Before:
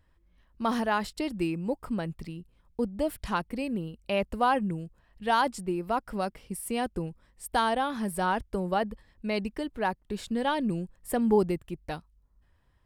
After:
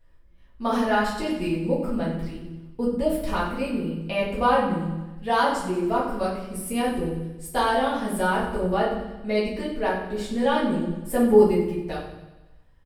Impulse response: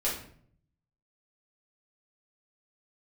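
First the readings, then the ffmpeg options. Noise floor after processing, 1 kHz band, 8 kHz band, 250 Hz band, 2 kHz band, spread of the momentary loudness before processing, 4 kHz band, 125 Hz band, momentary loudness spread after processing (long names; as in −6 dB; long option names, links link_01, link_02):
−52 dBFS, +4.0 dB, +3.5 dB, +5.5 dB, +5.0 dB, 12 LU, +4.0 dB, +5.0 dB, 10 LU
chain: -filter_complex "[0:a]aecho=1:1:92|184|276|368|460|552|644:0.282|0.163|0.0948|0.055|0.0319|0.0185|0.0107[link_01];[1:a]atrim=start_sample=2205[link_02];[link_01][link_02]afir=irnorm=-1:irlink=0,volume=-3dB"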